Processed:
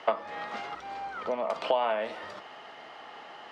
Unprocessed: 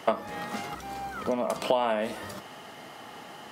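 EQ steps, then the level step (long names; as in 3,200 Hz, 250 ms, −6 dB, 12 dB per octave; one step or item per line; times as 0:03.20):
high-frequency loss of the air 64 metres
three-way crossover with the lows and the highs turned down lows −14 dB, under 400 Hz, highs −14 dB, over 5,100 Hz
0.0 dB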